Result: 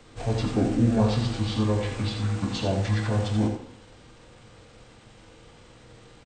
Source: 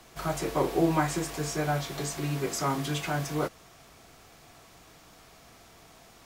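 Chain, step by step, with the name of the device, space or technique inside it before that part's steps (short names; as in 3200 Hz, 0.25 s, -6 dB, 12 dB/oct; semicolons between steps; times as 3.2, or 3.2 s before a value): monster voice (pitch shift -6 st; formant shift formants -4 st; low shelf 230 Hz +5.5 dB; echo 84 ms -7 dB; reverb RT60 0.80 s, pre-delay 4 ms, DRR 5 dB)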